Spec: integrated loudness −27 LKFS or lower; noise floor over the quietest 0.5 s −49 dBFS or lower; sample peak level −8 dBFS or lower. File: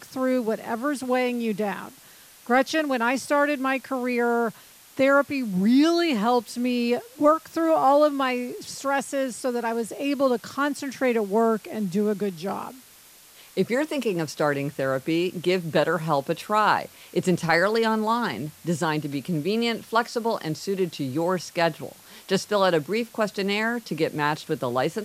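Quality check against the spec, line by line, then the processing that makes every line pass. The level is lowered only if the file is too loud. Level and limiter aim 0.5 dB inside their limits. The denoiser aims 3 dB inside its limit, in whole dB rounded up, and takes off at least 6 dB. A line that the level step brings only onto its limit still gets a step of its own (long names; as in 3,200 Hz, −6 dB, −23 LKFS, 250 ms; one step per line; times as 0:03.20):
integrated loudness −24.5 LKFS: out of spec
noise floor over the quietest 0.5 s −51 dBFS: in spec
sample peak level −7.0 dBFS: out of spec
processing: level −3 dB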